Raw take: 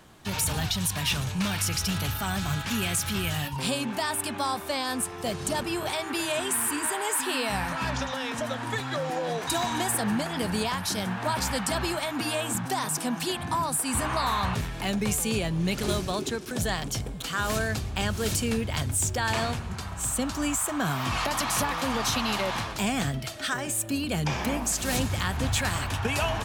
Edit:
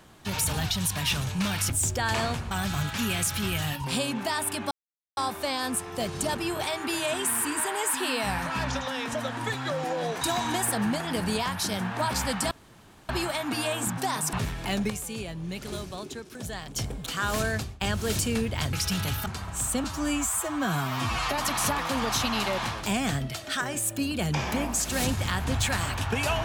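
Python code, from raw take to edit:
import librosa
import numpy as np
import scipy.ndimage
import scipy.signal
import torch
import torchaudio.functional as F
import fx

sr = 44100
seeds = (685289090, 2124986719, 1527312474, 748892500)

y = fx.edit(x, sr, fx.swap(start_s=1.7, length_s=0.53, other_s=18.89, other_length_s=0.81),
    fx.insert_silence(at_s=4.43, length_s=0.46),
    fx.insert_room_tone(at_s=11.77, length_s=0.58),
    fx.cut(start_s=13.01, length_s=1.48),
    fx.clip_gain(start_s=15.06, length_s=1.86, db=-8.0),
    fx.fade_out_to(start_s=17.72, length_s=0.25, floor_db=-23.5),
    fx.stretch_span(start_s=20.28, length_s=1.03, factor=1.5), tone=tone)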